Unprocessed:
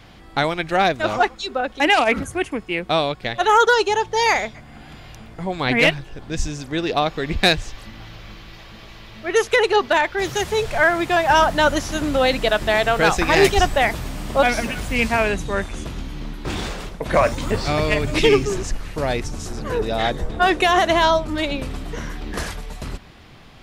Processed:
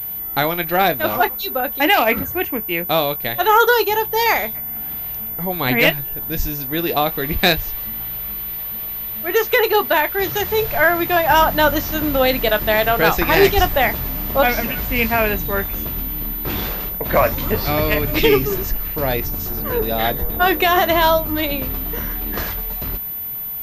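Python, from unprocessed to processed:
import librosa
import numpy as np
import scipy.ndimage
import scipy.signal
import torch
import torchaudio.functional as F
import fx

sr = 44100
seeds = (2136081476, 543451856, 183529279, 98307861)

y = fx.doubler(x, sr, ms=23.0, db=-13.0)
y = fx.pwm(y, sr, carrier_hz=14000.0)
y = F.gain(torch.from_numpy(y), 1.0).numpy()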